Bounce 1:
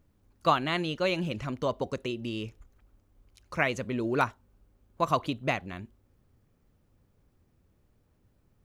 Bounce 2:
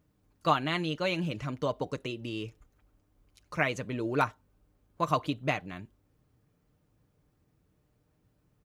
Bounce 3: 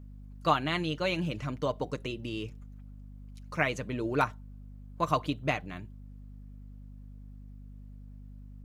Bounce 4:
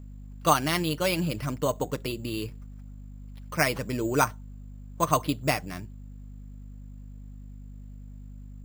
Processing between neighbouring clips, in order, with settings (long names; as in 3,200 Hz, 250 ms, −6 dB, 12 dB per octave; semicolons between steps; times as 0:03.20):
high-pass filter 44 Hz; comb filter 6.6 ms, depth 40%; level −2 dB
mains hum 50 Hz, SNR 12 dB
bad sample-rate conversion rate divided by 6×, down none, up hold; level +4 dB